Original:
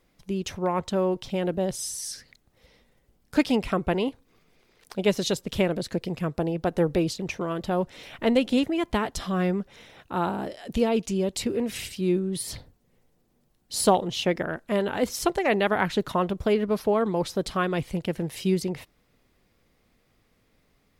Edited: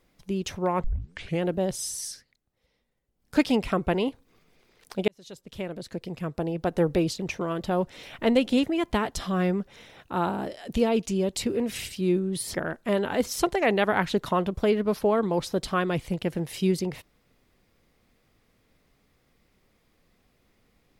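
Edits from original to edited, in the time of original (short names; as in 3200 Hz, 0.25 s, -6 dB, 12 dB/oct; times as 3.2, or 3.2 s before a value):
0.84 tape start 0.58 s
2.04–3.36 dip -14 dB, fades 0.21 s
5.08–6.86 fade in
12.54–14.37 cut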